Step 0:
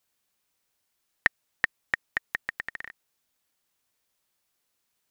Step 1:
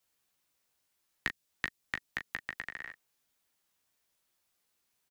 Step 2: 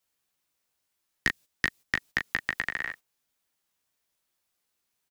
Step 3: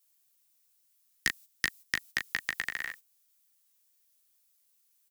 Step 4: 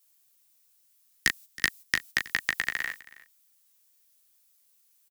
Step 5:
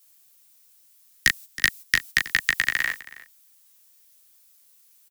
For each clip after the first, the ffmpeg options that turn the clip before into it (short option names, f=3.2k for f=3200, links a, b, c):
-filter_complex "[0:a]acrossover=split=250|420|2700[a][b][c][d];[c]acompressor=threshold=-35dB:ratio=6[e];[a][b][e][d]amix=inputs=4:normalize=0,aecho=1:1:15|38:0.473|0.316,volume=-2.5dB"
-filter_complex "[0:a]agate=range=-12dB:threshold=-54dB:ratio=16:detection=peak,asplit=2[a][b];[b]aeval=exprs='0.211*sin(PI/2*2.24*val(0)/0.211)':c=same,volume=-3dB[c];[a][c]amix=inputs=2:normalize=0"
-af "crystalizer=i=5:c=0,volume=-8.5dB"
-af "aecho=1:1:321:0.1,volume=4.5dB"
-filter_complex "[0:a]acrossover=split=170|1300[a][b][c];[b]alimiter=level_in=8dB:limit=-24dB:level=0:latency=1,volume=-8dB[d];[a][d][c]amix=inputs=3:normalize=0,asoftclip=type=tanh:threshold=-11dB,volume=8dB"